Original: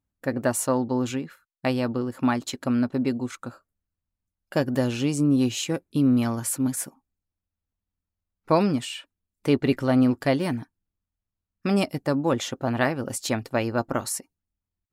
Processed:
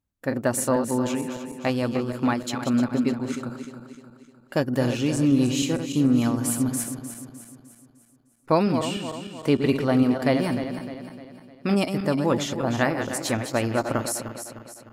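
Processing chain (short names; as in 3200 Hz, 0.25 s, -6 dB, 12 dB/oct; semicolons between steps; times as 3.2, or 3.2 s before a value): regenerating reverse delay 0.152 s, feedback 68%, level -8 dB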